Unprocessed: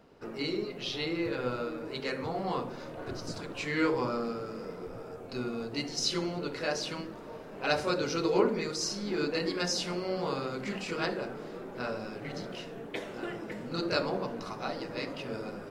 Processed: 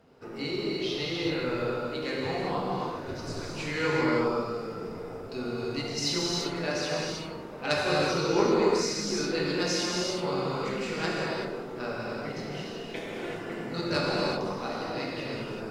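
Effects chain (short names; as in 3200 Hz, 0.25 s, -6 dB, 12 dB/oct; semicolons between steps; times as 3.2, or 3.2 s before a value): added harmonics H 3 -17 dB, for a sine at -11 dBFS; non-linear reverb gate 0.41 s flat, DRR -4 dB; gain +2.5 dB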